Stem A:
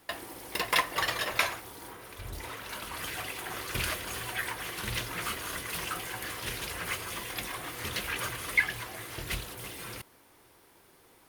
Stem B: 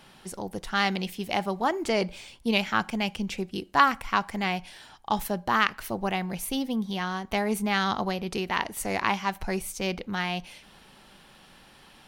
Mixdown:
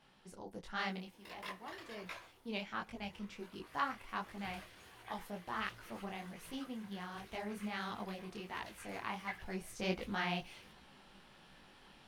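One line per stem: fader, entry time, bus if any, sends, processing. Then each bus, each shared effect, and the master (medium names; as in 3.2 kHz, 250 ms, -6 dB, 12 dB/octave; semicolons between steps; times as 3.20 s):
-16.5 dB, 0.70 s, no send, none
0.95 s -9.5 dB -> 1.17 s -20.5 dB -> 2.05 s -20.5 dB -> 2.44 s -12 dB -> 9.43 s -12 dB -> 9.85 s -3 dB, 0.00 s, no send, none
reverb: none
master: treble shelf 7.6 kHz -10 dB; detune thickener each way 48 cents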